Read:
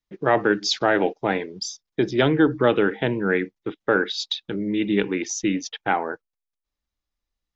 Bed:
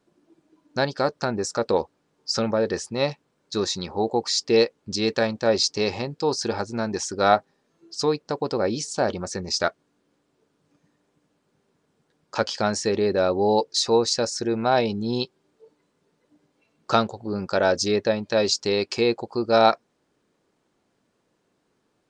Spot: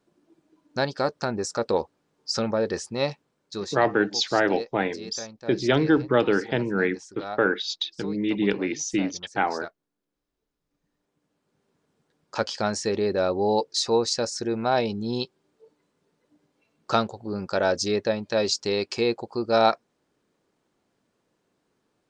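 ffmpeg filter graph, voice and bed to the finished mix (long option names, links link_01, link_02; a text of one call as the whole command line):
ffmpeg -i stem1.wav -i stem2.wav -filter_complex "[0:a]adelay=3500,volume=-2dB[link_01];[1:a]volume=12dB,afade=type=out:start_time=3.19:duration=0.72:silence=0.188365,afade=type=in:start_time=10.67:duration=1.1:silence=0.199526[link_02];[link_01][link_02]amix=inputs=2:normalize=0" out.wav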